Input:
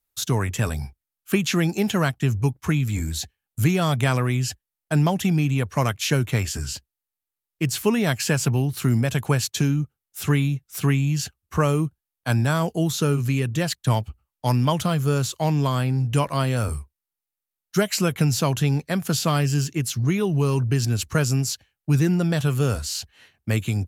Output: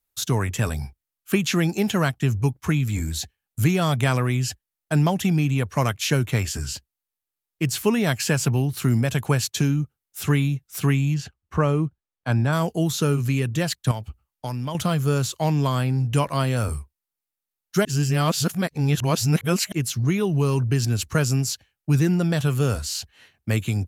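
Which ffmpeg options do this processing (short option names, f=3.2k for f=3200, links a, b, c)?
-filter_complex "[0:a]asettb=1/sr,asplit=3[a][b][c];[a]atrim=end=11.144[d];[b]atrim=start=11.14:end=12.53,asetpts=PTS-STARTPTS,afade=t=in:d=0.004:c=qsin,afade=t=out:st=1.386:d=0.004:c=qsin,aemphasis=mode=reproduction:type=75kf[e];[c]atrim=start=12.526[f];[d][e]acrossfade=d=0.004:c1=hsin:c2=qsin[g];[g][f]acrossfade=d=0.004:c1=qsin:c2=hsin,asettb=1/sr,asplit=3[h][i][j];[h]atrim=end=13.914[k];[i]atrim=start=13.91:end=14.75,asetpts=PTS-STARTPTS,afade=t=in:d=0.004:c=qsin,afade=t=out:st=0.836:d=0.004:c=qsin,acompressor=threshold=-26dB:ratio=4:attack=3.2:release=140:knee=1:detection=peak[l];[j]atrim=start=14.746[m];[k][l]acrossfade=d=0.004:c1=hsin:c2=qsin[n];[n][m]acrossfade=d=0.004:c1=qsin:c2=hsin,asplit=3[o][p][q];[o]atrim=end=17.852[r];[p]atrim=start=17.848:end=19.722,asetpts=PTS-STARTPTS,areverse[s];[q]atrim=start=19.718[t];[r][s]acrossfade=d=0.004:c1=hsin:c2=hsin[u];[u][t]acrossfade=d=0.004:c1=hsin:c2=hsin"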